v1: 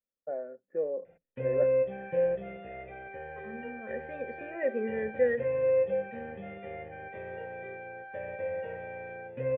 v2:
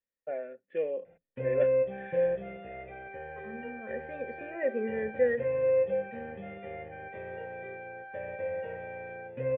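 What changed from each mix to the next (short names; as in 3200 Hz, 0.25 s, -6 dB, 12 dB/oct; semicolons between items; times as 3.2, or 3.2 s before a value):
first voice: remove inverse Chebyshev low-pass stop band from 3500 Hz, stop band 50 dB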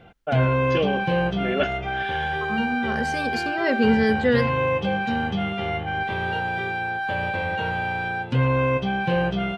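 second voice: entry -0.95 s; background: entry -1.05 s; master: remove vocal tract filter e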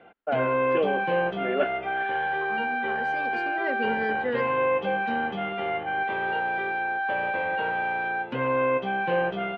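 first voice: add LPF 1700 Hz 6 dB/oct; second voice -7.0 dB; master: add three-band isolator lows -22 dB, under 250 Hz, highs -19 dB, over 2800 Hz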